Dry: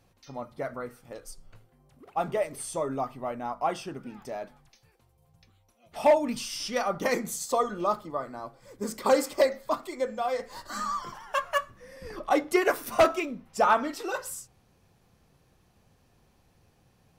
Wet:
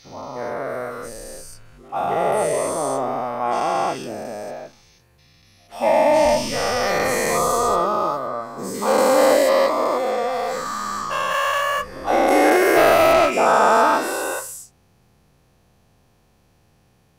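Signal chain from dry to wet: every event in the spectrogram widened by 480 ms; 6.24–7.80 s: resonant low shelf 130 Hz +13 dB, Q 1.5; trim -1 dB

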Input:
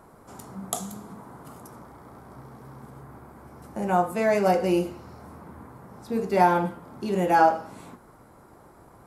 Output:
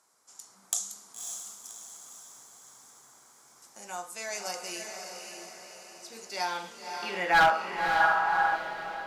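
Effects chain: band-pass sweep 6.3 kHz -> 630 Hz, 6.24–8.28 s; level rider gain up to 4.5 dB; hard clipper -21.5 dBFS, distortion -11 dB; echo that smears into a reverb 563 ms, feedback 52%, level -5 dB; time-frequency box 8.01–8.56 s, 670–1800 Hz +8 dB; trim +5.5 dB

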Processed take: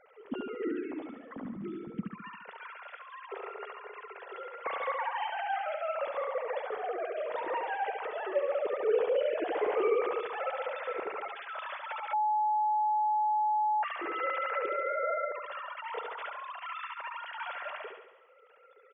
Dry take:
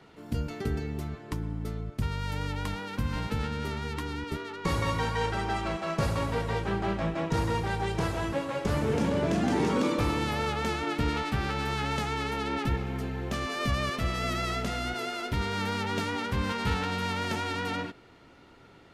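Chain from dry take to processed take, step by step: formants replaced by sine waves; 2.28–4.41 s: Chebyshev high-pass 390 Hz, order 8; dynamic bell 490 Hz, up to +4 dB, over -41 dBFS, Q 2.9; feedback delay 70 ms, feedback 55%, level -5 dB; 12.13–13.83 s: bleep 852 Hz -17 dBFS; trim -8 dB

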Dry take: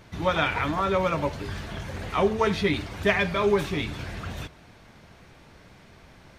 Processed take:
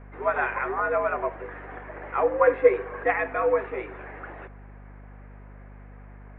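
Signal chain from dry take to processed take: mistuned SSB +88 Hz 270–2000 Hz; hum 50 Hz, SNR 16 dB; 2.32–3.03 s: small resonant body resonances 490/1100/1600 Hz, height 9 dB -> 13 dB

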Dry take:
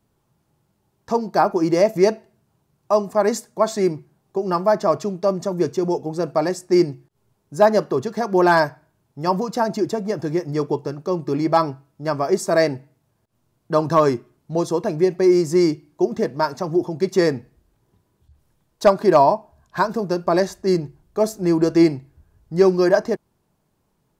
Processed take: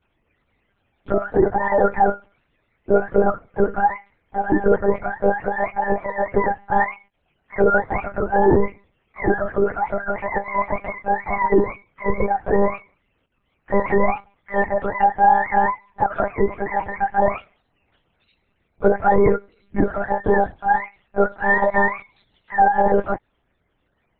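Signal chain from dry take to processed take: spectrum inverted on a logarithmic axis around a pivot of 550 Hz; monotone LPC vocoder at 8 kHz 200 Hz; peak limiter -9.5 dBFS, peak gain reduction 8 dB; trim +4 dB

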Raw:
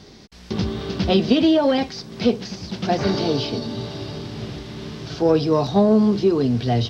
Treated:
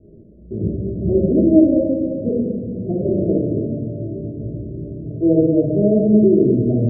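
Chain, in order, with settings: Chebyshev low-pass 640 Hz, order 8; dynamic bell 350 Hz, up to +4 dB, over -32 dBFS, Q 7.5; simulated room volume 1600 m³, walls mixed, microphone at 3.2 m; trim -4 dB

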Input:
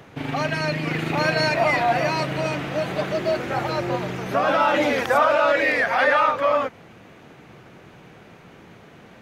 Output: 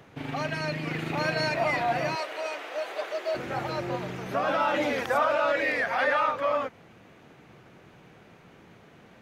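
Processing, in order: 2.15–3.35 s: high-pass 440 Hz 24 dB/octave; trim -6.5 dB

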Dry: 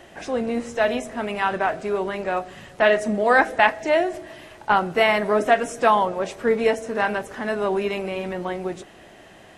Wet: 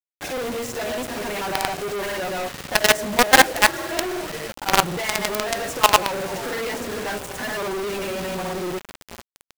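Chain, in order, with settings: comb of notches 220 Hz; frequency-shifting echo 444 ms, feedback 51%, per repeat -150 Hz, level -21.5 dB; granulator 100 ms, grains 20 per s, pitch spread up and down by 0 st; companded quantiser 2-bit; trim -1 dB

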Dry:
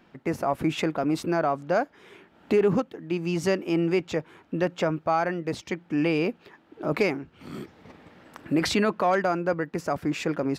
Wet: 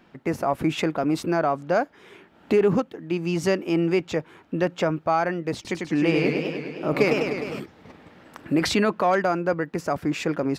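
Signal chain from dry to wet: 5.54–7.60 s: modulated delay 102 ms, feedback 72%, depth 149 cents, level -4 dB; trim +2 dB

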